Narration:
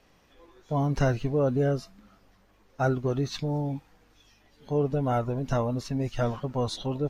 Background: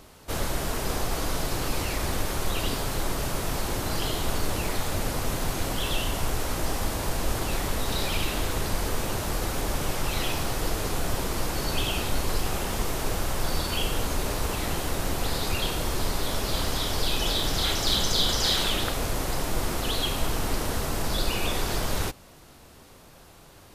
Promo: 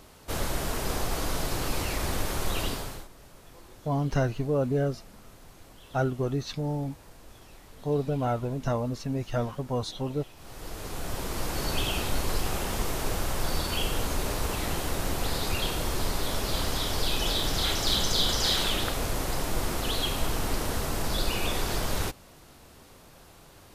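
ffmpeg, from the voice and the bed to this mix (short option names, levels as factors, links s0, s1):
-filter_complex "[0:a]adelay=3150,volume=0.841[s0];[1:a]volume=10,afade=t=out:st=2.61:d=0.47:silence=0.0841395,afade=t=in:st=10.36:d=1.29:silence=0.0841395[s1];[s0][s1]amix=inputs=2:normalize=0"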